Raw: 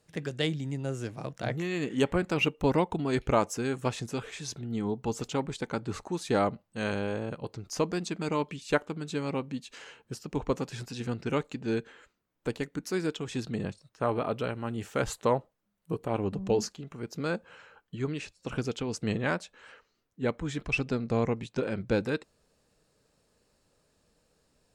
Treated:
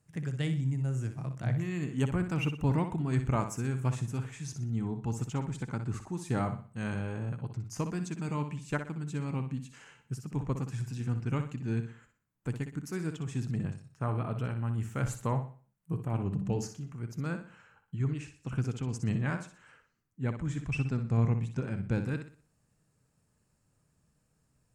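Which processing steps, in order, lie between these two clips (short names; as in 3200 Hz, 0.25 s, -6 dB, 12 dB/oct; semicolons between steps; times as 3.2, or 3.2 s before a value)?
ten-band EQ 125 Hz +11 dB, 500 Hz -8 dB, 4000 Hz -10 dB, 8000 Hz +3 dB; flutter echo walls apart 10.5 m, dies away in 0.41 s; gain -4.5 dB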